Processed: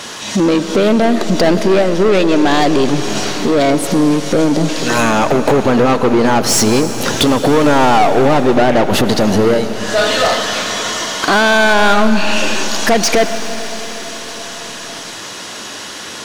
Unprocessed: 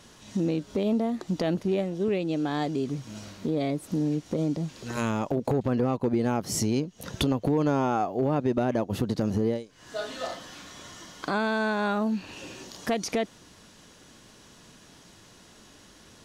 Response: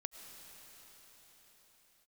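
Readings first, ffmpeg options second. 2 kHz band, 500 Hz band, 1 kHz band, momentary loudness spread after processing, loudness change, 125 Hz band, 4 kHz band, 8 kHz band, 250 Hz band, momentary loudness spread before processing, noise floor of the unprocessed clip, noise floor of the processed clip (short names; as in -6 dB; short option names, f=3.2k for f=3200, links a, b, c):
+20.5 dB, +16.0 dB, +18.0 dB, 15 LU, +15.0 dB, +10.0 dB, +21.5 dB, +20.0 dB, +13.5 dB, 11 LU, -54 dBFS, -28 dBFS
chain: -filter_complex "[0:a]asplit=2[a][b];[b]highpass=f=720:p=1,volume=24dB,asoftclip=type=tanh:threshold=-13.5dB[c];[a][c]amix=inputs=2:normalize=0,lowpass=f=7.1k:p=1,volume=-6dB,asplit=2[d][e];[1:a]atrim=start_sample=2205[f];[e][f]afir=irnorm=-1:irlink=0,volume=6.5dB[g];[d][g]amix=inputs=2:normalize=0,volume=2dB"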